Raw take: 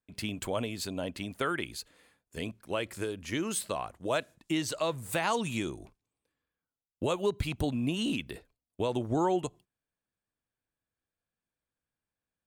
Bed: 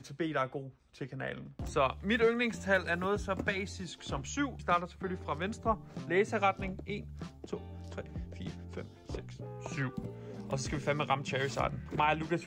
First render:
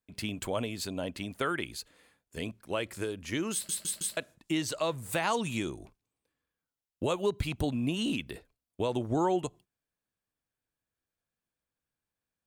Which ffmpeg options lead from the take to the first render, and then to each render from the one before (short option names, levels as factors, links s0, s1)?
-filter_complex "[0:a]asplit=5[s0][s1][s2][s3][s4];[s0]atrim=end=3.692[s5];[s1]atrim=start=3.528:end=3.692[s6];[s2]atrim=start=3.528:end=3.692[s7];[s3]atrim=start=3.528:end=3.692[s8];[s4]atrim=start=4.168[s9];[s5][s6]acrossfade=d=0.004:c1=hsin:c2=hsin[s10];[s10][s7]acrossfade=d=0.004:c1=hsin:c2=hsin[s11];[s11][s8]acrossfade=d=0.004:c1=hsin:c2=hsin[s12];[s12][s9]acrossfade=d=0.004:c1=hsin:c2=hsin"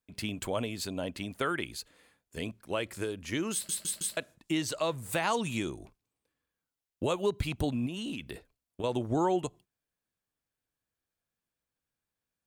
-filter_complex "[0:a]asettb=1/sr,asplit=3[s0][s1][s2];[s0]atrim=end=7.864[s3];[s1]atrim=start=7.86:end=8.84,asetpts=PTS-STARTPTS,afade=t=in:d=0.004:c=qsin,afade=t=out:st=0.976:d=0.004:c=qsin,acompressor=threshold=0.0224:ratio=6:attack=3.2:release=140:knee=1:detection=peak[s4];[s2]atrim=start=8.836[s5];[s3][s4]acrossfade=d=0.004:c1=hsin:c2=qsin[s6];[s6][s5]acrossfade=d=0.004:c1=qsin:c2=hsin"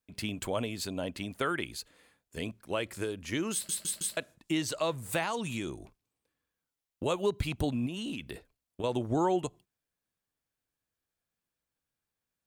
-filter_complex "[0:a]asettb=1/sr,asplit=3[s0][s1][s2];[s0]atrim=end=5.234[s3];[s1]atrim=start=5.23:end=7.06,asetpts=PTS-STARTPTS,afade=t=in:d=0.004:c=qsin,afade=t=out:st=1.826:d=0.004:c=qsin,acompressor=threshold=0.0251:ratio=2:attack=3.2:release=140:knee=1:detection=peak[s4];[s2]atrim=start=7.056[s5];[s3][s4]acrossfade=d=0.004:c1=hsin:c2=qsin[s6];[s6][s5]acrossfade=d=0.004:c1=qsin:c2=hsin"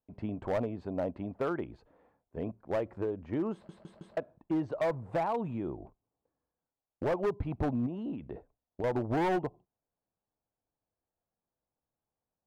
-af "lowpass=f=800:t=q:w=1.8,volume=18.8,asoftclip=hard,volume=0.0531"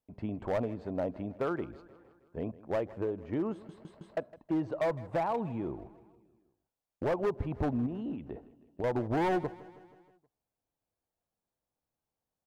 -af "aecho=1:1:159|318|477|636|795:0.106|0.0625|0.0369|0.0218|0.0128"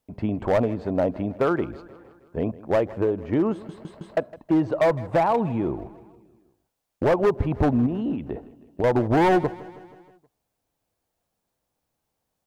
-af "volume=3.35"